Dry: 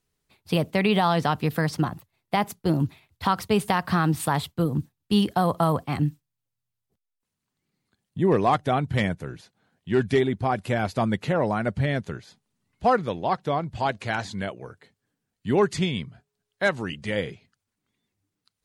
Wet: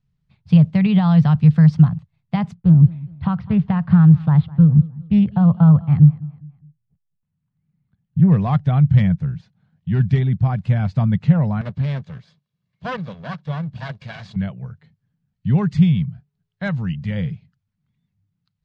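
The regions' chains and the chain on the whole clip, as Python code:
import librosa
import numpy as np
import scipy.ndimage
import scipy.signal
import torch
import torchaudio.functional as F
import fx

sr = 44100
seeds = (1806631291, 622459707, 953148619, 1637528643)

y = fx.chain(x, sr, fx.air_absorb(metres=310.0),
    fx.echo_feedback(ms=206, feedback_pct=37, wet_db=-20.5),
    fx.doppler_dist(depth_ms=0.21), at=(2.54, 8.3))
y = fx.chain(y, sr, fx.lower_of_two(delay_ms=1.8),
    fx.highpass(hz=180.0, slope=12),
    fx.peak_eq(hz=3900.0, db=4.0, octaves=0.99), at=(11.61, 14.36))
y = scipy.signal.sosfilt(scipy.signal.bessel(4, 4000.0, 'lowpass', norm='mag', fs=sr, output='sos'), y)
y = fx.low_shelf_res(y, sr, hz=230.0, db=12.5, q=3.0)
y = y * librosa.db_to_amplitude(-4.0)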